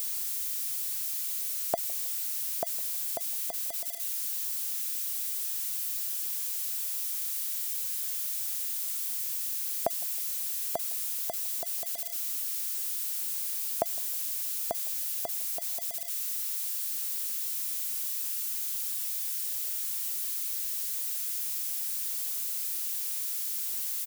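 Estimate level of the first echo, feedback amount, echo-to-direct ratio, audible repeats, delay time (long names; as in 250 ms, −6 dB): −22.5 dB, 38%, −22.0 dB, 2, 159 ms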